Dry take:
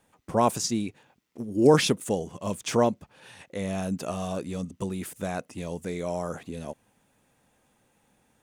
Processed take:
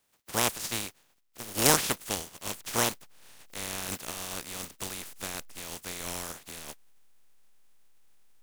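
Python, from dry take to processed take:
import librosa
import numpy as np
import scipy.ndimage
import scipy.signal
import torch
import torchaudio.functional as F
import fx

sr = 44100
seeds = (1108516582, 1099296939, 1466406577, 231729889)

p1 = fx.spec_flatten(x, sr, power=0.24)
p2 = fx.backlash(p1, sr, play_db=-15.5)
p3 = p1 + (p2 * librosa.db_to_amplitude(-9.5))
y = p3 * librosa.db_to_amplitude(-6.5)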